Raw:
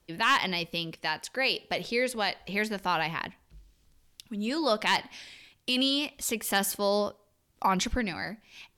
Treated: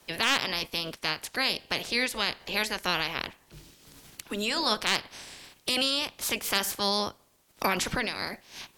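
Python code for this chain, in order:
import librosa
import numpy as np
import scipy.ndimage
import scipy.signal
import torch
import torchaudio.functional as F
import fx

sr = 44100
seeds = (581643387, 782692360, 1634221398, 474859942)

y = fx.spec_clip(x, sr, under_db=19)
y = fx.band_squash(y, sr, depth_pct=40)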